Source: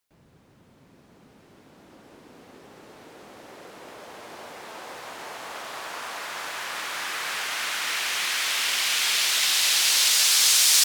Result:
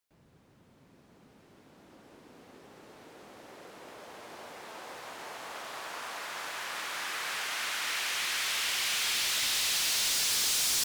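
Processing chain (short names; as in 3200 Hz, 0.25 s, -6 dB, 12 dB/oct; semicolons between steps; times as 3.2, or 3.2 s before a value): hard clip -21.5 dBFS, distortion -8 dB; gain -5 dB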